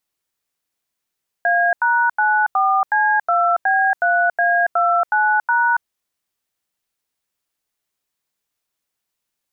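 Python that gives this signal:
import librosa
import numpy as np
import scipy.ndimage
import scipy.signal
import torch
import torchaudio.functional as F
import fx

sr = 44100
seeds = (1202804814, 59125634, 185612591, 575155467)

y = fx.dtmf(sr, digits='A#94C2B3A29#', tone_ms=280, gap_ms=87, level_db=-16.0)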